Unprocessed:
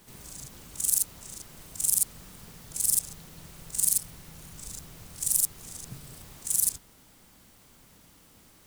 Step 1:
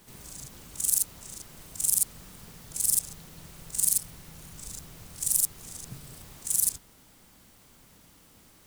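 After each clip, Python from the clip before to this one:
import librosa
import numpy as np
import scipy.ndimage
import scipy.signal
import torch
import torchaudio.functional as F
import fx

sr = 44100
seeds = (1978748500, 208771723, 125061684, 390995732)

y = x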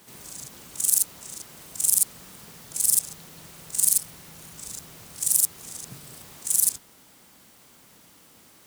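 y = fx.highpass(x, sr, hz=220.0, slope=6)
y = y * 10.0 ** (4.0 / 20.0)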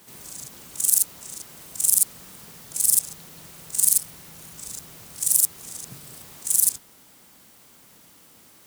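y = fx.high_shelf(x, sr, hz=9500.0, db=3.5)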